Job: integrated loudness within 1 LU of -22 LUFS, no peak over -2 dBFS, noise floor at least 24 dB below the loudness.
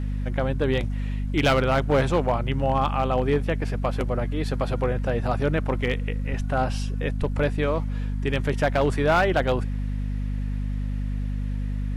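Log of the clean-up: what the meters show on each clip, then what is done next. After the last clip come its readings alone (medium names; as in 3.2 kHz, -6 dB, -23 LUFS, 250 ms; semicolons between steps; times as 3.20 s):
clipped samples 0.7%; clipping level -14.0 dBFS; hum 50 Hz; highest harmonic 250 Hz; hum level -24 dBFS; loudness -25.0 LUFS; peak level -14.0 dBFS; loudness target -22.0 LUFS
-> clip repair -14 dBFS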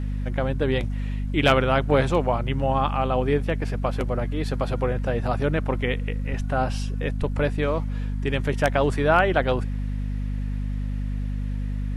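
clipped samples 0.0%; hum 50 Hz; highest harmonic 250 Hz; hum level -24 dBFS
-> hum notches 50/100/150/200/250 Hz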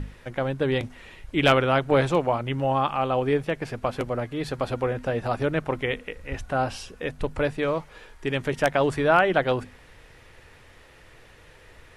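hum not found; loudness -25.5 LUFS; peak level -4.5 dBFS; loudness target -22.0 LUFS
-> trim +3.5 dB; peak limiter -2 dBFS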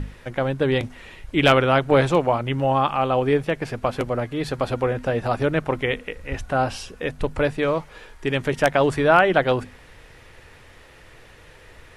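loudness -22.0 LUFS; peak level -2.0 dBFS; noise floor -48 dBFS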